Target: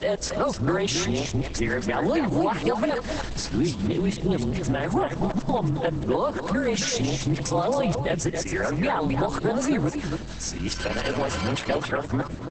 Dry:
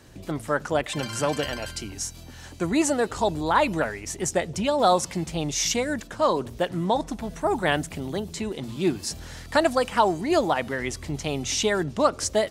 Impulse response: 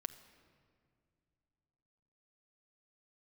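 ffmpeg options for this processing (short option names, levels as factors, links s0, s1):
-filter_complex "[0:a]areverse,acrossover=split=7800[s0][s1];[s1]acompressor=threshold=0.00562:ratio=4:attack=1:release=60[s2];[s0][s2]amix=inputs=2:normalize=0,alimiter=limit=0.141:level=0:latency=1:release=56,acompressor=threshold=0.0316:ratio=4,afreqshift=-31,aemphasis=mode=reproduction:type=cd,aecho=1:1:267|273:0.376|0.266,asplit=2[s3][s4];[1:a]atrim=start_sample=2205[s5];[s4][s5]afir=irnorm=-1:irlink=0,volume=0.668[s6];[s3][s6]amix=inputs=2:normalize=0,volume=1.78" -ar 48000 -c:a libopus -b:a 10k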